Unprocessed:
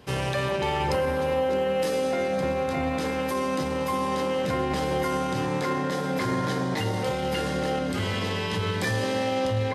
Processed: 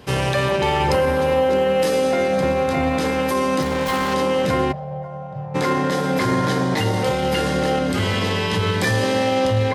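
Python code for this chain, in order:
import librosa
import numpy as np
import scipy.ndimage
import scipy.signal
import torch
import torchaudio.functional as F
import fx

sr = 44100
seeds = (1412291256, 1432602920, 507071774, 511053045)

y = fx.self_delay(x, sr, depth_ms=0.3, at=(3.62, 4.14))
y = fx.double_bandpass(y, sr, hz=300.0, octaves=2.2, at=(4.71, 5.54), fade=0.02)
y = y * 10.0 ** (7.0 / 20.0)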